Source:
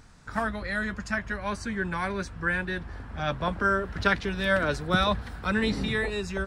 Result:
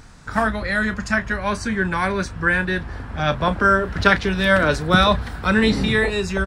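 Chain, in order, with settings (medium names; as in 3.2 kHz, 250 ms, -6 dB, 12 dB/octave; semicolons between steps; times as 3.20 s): doubling 32 ms -13 dB; trim +8.5 dB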